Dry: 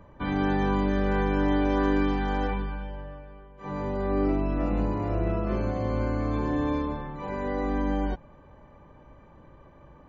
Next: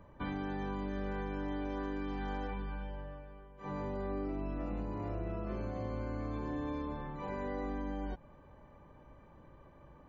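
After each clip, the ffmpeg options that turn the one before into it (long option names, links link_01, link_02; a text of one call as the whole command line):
ffmpeg -i in.wav -af "acompressor=threshold=-29dB:ratio=6,volume=-5.5dB" out.wav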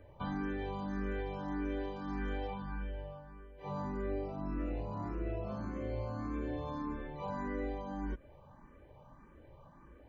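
ffmpeg -i in.wav -filter_complex "[0:a]asplit=2[link_01][link_02];[link_02]afreqshift=1.7[link_03];[link_01][link_03]amix=inputs=2:normalize=1,volume=3dB" out.wav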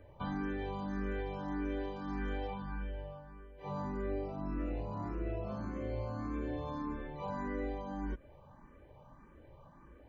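ffmpeg -i in.wav -af anull out.wav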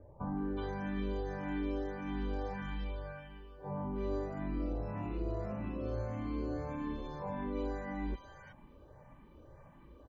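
ffmpeg -i in.wav -filter_complex "[0:a]acrossover=split=1200[link_01][link_02];[link_02]adelay=370[link_03];[link_01][link_03]amix=inputs=2:normalize=0,volume=1dB" out.wav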